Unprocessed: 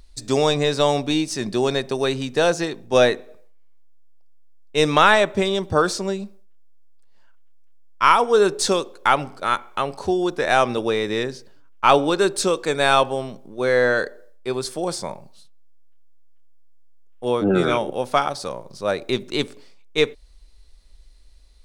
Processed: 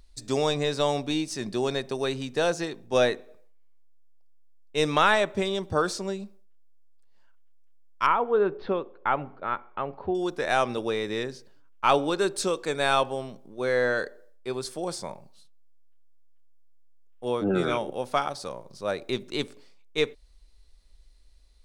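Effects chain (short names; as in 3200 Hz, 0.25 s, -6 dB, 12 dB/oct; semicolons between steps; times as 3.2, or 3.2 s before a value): 8.06–10.15 Gaussian blur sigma 3.6 samples; gain -6.5 dB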